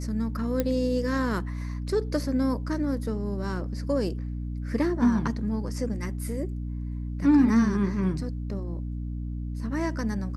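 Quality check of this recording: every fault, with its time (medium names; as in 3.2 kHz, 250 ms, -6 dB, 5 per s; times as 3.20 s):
hum 60 Hz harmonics 5 -32 dBFS
0.60 s: pop -12 dBFS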